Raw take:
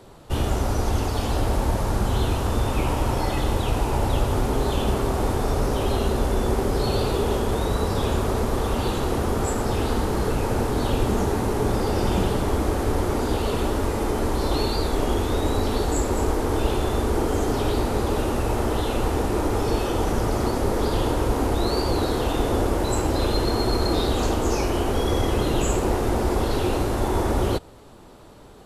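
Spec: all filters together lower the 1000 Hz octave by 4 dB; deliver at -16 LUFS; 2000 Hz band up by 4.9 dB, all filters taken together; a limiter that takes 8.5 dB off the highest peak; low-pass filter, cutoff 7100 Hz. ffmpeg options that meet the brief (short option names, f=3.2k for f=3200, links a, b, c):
-af "lowpass=7.1k,equalizer=f=1k:t=o:g=-7.5,equalizer=f=2k:t=o:g=9,volume=11.5dB,alimiter=limit=-6dB:level=0:latency=1"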